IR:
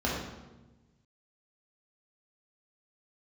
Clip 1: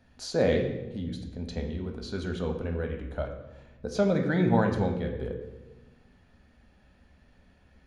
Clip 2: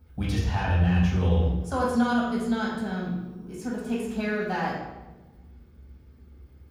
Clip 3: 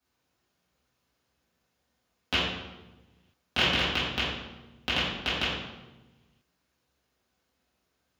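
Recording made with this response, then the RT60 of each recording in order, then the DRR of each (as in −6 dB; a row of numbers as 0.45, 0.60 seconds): 2; 1.1, 1.1, 1.1 seconds; 4.0, −5.0, −11.5 decibels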